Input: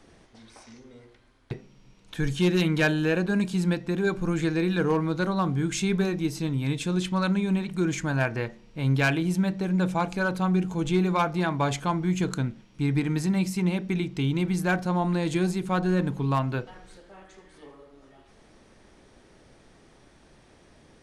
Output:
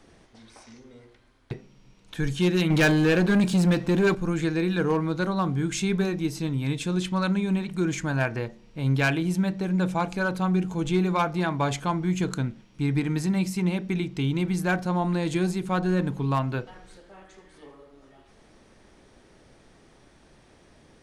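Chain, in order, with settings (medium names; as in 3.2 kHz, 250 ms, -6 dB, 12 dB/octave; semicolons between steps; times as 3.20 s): 2.70–4.15 s: waveshaping leveller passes 2; 8.38–8.86 s: dynamic bell 1.8 kHz, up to -6 dB, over -47 dBFS, Q 0.94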